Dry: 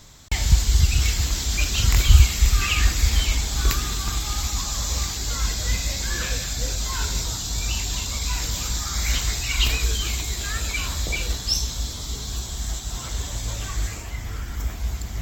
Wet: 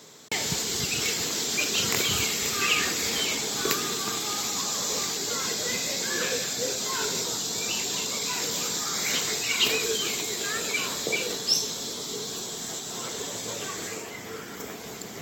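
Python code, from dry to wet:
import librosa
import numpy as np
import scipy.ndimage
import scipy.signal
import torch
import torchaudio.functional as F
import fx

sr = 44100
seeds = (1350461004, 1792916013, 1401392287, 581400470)

y = scipy.signal.sosfilt(scipy.signal.butter(4, 170.0, 'highpass', fs=sr, output='sos'), x)
y = fx.peak_eq(y, sr, hz=440.0, db=11.5, octaves=0.46)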